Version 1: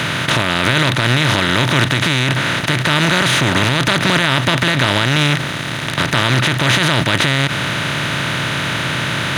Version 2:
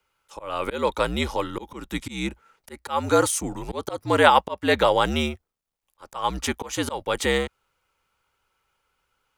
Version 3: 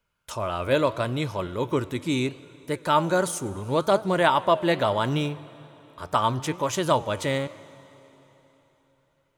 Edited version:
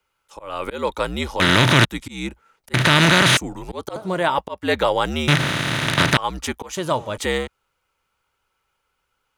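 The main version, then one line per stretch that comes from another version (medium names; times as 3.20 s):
2
1.40–1.85 s: from 1
2.74–3.37 s: from 1
3.96–4.38 s: from 3
5.28–6.17 s: from 1
6.77–7.17 s: from 3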